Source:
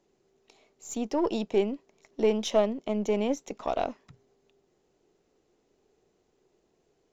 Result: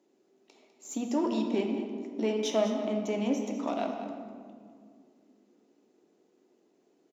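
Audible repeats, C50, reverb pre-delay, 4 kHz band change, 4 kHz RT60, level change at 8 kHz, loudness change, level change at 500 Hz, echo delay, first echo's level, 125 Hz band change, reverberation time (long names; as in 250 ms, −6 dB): 1, 4.5 dB, 3 ms, −1.5 dB, 1.1 s, can't be measured, −2.5 dB, −3.5 dB, 201 ms, −12.0 dB, can't be measured, 2.2 s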